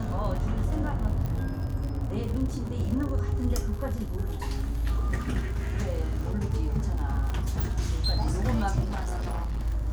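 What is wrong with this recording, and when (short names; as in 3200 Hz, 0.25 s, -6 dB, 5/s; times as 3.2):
crackle 58/s -33 dBFS
1.26 pop -21 dBFS
7.3 pop -20 dBFS
8.84–9.61 clipped -27 dBFS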